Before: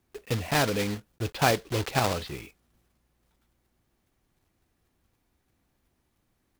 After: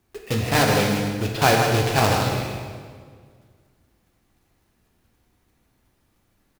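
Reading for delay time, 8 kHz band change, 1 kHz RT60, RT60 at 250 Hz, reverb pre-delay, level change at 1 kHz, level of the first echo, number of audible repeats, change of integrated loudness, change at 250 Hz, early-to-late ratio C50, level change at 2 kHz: 156 ms, +6.5 dB, 1.7 s, 2.1 s, 8 ms, +8.0 dB, −6.5 dB, 1, +7.0 dB, +8.0 dB, 1.0 dB, +7.5 dB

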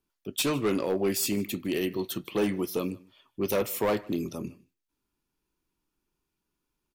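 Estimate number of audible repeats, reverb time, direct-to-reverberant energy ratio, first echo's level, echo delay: 1, no reverb audible, no reverb audible, −24.0 dB, 154 ms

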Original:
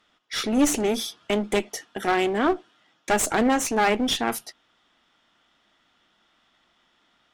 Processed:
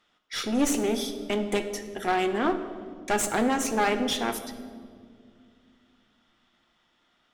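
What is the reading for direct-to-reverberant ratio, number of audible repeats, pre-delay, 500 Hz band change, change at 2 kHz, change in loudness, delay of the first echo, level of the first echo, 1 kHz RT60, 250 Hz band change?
7.5 dB, no echo audible, 6 ms, −3.0 dB, −3.5 dB, −3.0 dB, no echo audible, no echo audible, 1.7 s, −3.0 dB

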